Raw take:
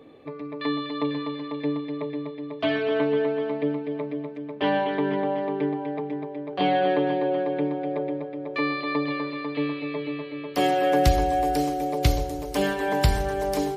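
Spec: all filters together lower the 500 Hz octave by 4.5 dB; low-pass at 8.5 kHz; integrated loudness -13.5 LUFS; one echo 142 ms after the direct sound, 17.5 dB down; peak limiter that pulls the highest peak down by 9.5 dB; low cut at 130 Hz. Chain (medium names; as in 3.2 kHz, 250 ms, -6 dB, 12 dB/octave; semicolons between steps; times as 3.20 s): high-pass 130 Hz; low-pass 8.5 kHz; peaking EQ 500 Hz -5.5 dB; peak limiter -20.5 dBFS; delay 142 ms -17.5 dB; trim +17 dB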